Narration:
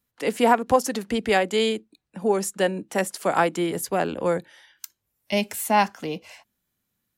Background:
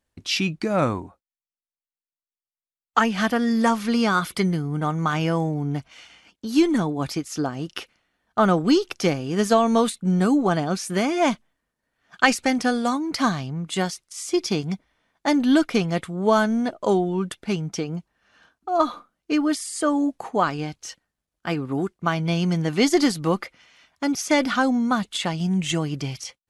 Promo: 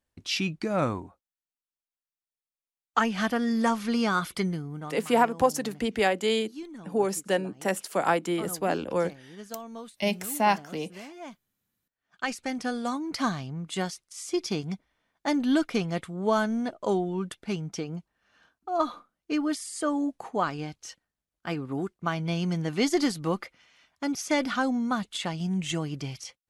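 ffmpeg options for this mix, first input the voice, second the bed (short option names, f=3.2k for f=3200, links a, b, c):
-filter_complex "[0:a]adelay=4700,volume=-3.5dB[a];[1:a]volume=11dB,afade=t=out:st=4.33:d=0.71:silence=0.141254,afade=t=in:st=11.86:d=1.23:silence=0.158489[b];[a][b]amix=inputs=2:normalize=0"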